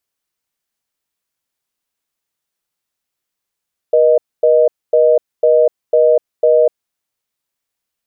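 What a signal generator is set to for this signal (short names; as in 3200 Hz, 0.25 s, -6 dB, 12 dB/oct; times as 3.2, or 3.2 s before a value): call progress tone reorder tone, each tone -10 dBFS 2.95 s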